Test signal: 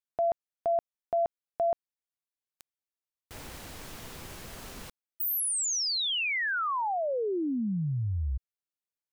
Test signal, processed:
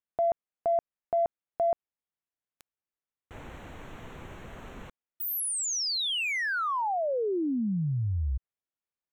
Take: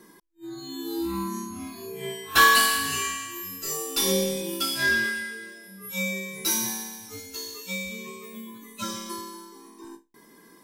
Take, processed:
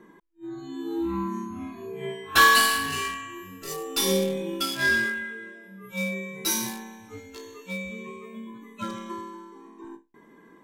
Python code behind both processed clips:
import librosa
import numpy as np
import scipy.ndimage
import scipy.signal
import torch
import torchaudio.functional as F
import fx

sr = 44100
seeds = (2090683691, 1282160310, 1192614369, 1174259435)

p1 = fx.wiener(x, sr, points=9)
p2 = fx.high_shelf(p1, sr, hz=12000.0, db=-4.0)
p3 = 10.0 ** (-15.0 / 20.0) * np.tanh(p2 / 10.0 ** (-15.0 / 20.0))
p4 = p2 + (p3 * librosa.db_to_amplitude(-8.0))
y = p4 * librosa.db_to_amplitude(-1.5)